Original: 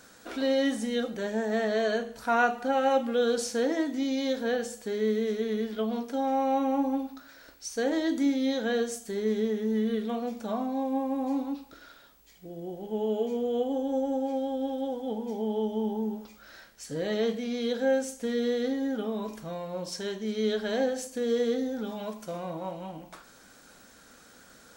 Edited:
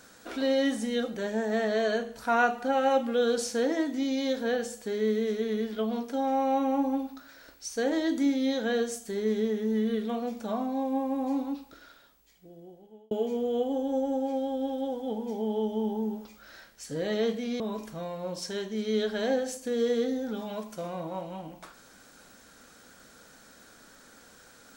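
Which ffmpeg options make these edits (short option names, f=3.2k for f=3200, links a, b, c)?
-filter_complex "[0:a]asplit=3[a][b][c];[a]atrim=end=13.11,asetpts=PTS-STARTPTS,afade=t=out:st=11.56:d=1.55[d];[b]atrim=start=13.11:end=17.602,asetpts=PTS-STARTPTS,afade=t=in:d=0.004:c=hsin[e];[c]atrim=start=19.098[f];[d][e]concat=n=2:v=0:a=1[g];[g][f]acrossfade=d=0.004:c1=hsin:c2=hsin"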